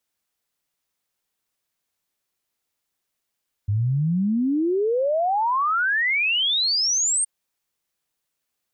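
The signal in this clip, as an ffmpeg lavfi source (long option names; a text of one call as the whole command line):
ffmpeg -f lavfi -i "aevalsrc='0.119*clip(min(t,3.57-t)/0.01,0,1)*sin(2*PI*98*3.57/log(8900/98)*(exp(log(8900/98)*t/3.57)-1))':duration=3.57:sample_rate=44100" out.wav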